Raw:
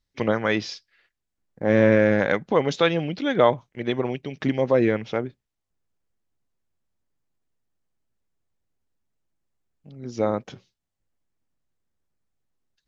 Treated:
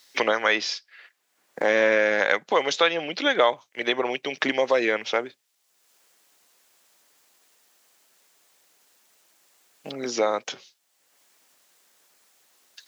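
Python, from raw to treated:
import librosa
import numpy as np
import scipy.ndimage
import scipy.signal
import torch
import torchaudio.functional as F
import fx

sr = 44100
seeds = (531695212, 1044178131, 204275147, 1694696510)

y = scipy.signal.sosfilt(scipy.signal.butter(2, 520.0, 'highpass', fs=sr, output='sos'), x)
y = fx.high_shelf(y, sr, hz=2200.0, db=8.5)
y = fx.band_squash(y, sr, depth_pct=70)
y = y * librosa.db_to_amplitude(1.5)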